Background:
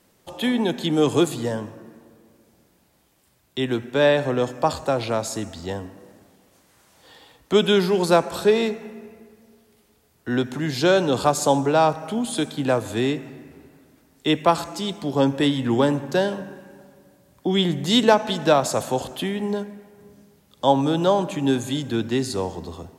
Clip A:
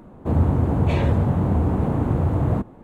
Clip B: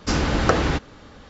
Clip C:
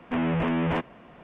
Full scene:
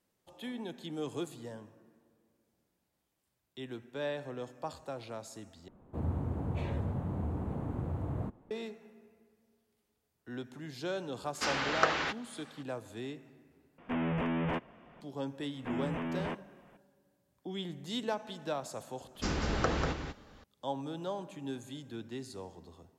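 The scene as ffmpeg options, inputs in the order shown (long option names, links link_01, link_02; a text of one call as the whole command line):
ffmpeg -i bed.wav -i cue0.wav -i cue1.wav -i cue2.wav -filter_complex "[2:a]asplit=2[link_01][link_02];[3:a]asplit=2[link_03][link_04];[0:a]volume=-19dB[link_05];[link_01]bandpass=frequency=2200:width_type=q:width=0.59:csg=0[link_06];[link_02]aecho=1:1:192:0.473[link_07];[link_05]asplit=3[link_08][link_09][link_10];[link_08]atrim=end=5.684[link_11];[1:a]atrim=end=2.83,asetpts=PTS-STARTPTS,volume=-15.5dB[link_12];[link_09]atrim=start=8.506:end=13.784[link_13];[link_03]atrim=end=1.23,asetpts=PTS-STARTPTS,volume=-7dB[link_14];[link_10]atrim=start=15.006[link_15];[link_06]atrim=end=1.29,asetpts=PTS-STARTPTS,volume=-4dB,afade=type=in:duration=0.004:curve=hsin,afade=type=out:start_time=1.286:duration=0.004:curve=hsin,adelay=11340[link_16];[link_04]atrim=end=1.23,asetpts=PTS-STARTPTS,volume=-11dB,afade=type=in:duration=0.004:curve=hsin,afade=type=out:start_time=1.226:duration=0.004:curve=hsin,adelay=15540[link_17];[link_07]atrim=end=1.29,asetpts=PTS-STARTPTS,volume=-12dB,afade=type=in:duration=0.004:curve=hsin,afade=type=out:start_time=1.286:duration=0.004:curve=hsin,adelay=19150[link_18];[link_11][link_12]acrossfade=duration=0.004:curve1=hsin:curve2=hsin[link_19];[link_19][link_13]acrossfade=duration=0.004:curve1=hsin:curve2=hsin[link_20];[link_20][link_14]acrossfade=duration=0.004:curve1=hsin:curve2=hsin[link_21];[link_21][link_15]acrossfade=duration=0.004:curve1=hsin:curve2=hsin[link_22];[link_22][link_16][link_17][link_18]amix=inputs=4:normalize=0" out.wav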